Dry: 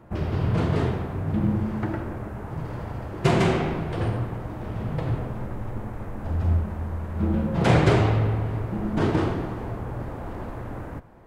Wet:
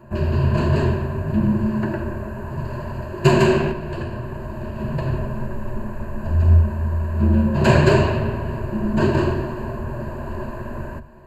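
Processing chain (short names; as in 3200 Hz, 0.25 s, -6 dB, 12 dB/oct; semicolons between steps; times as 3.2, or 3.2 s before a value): ripple EQ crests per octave 1.4, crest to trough 15 dB; 3.71–4.79 compressor, threshold -26 dBFS, peak gain reduction 6.5 dB; gain +2 dB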